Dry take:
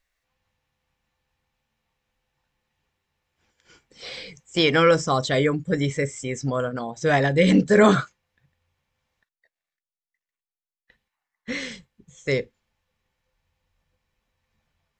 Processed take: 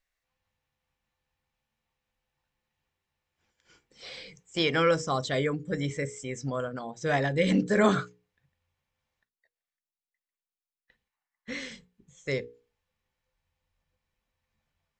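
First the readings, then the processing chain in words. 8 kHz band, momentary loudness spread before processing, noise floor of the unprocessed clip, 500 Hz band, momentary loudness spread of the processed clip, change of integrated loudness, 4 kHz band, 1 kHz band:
−6.5 dB, 19 LU, below −85 dBFS, −7.5 dB, 19 LU, −7.0 dB, −6.5 dB, −6.5 dB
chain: mains-hum notches 60/120/180/240/300/360/420/480 Hz
level −6.5 dB

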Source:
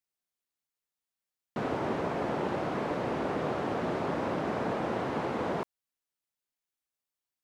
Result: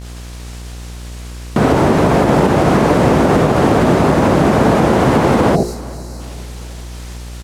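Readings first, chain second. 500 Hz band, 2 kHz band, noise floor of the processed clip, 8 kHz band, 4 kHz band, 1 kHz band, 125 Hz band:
+19.0 dB, +18.0 dB, −30 dBFS, can't be measured, +19.5 dB, +18.0 dB, +24.5 dB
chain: hum removal 59.48 Hz, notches 9
bit-depth reduction 8 bits, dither triangular
low-pass filter 8,200 Hz 12 dB per octave
downward expander −38 dBFS
low-shelf EQ 230 Hz +10 dB
downward compressor 4 to 1, threshold −46 dBFS, peak gain reduction 18 dB
time-frequency box erased 0:05.56–0:06.20, 820–3,800 Hz
hum with harmonics 60 Hz, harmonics 31, −64 dBFS −8 dB per octave
repeating echo 399 ms, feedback 54%, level −21 dB
boost into a limiter +35 dB
level −1 dB

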